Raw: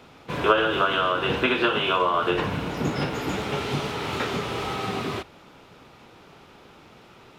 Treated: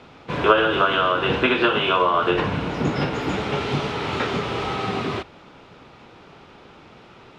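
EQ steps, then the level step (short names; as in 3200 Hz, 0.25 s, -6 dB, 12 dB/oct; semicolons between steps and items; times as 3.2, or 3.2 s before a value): Bessel low-pass 4800 Hz, order 2; +3.5 dB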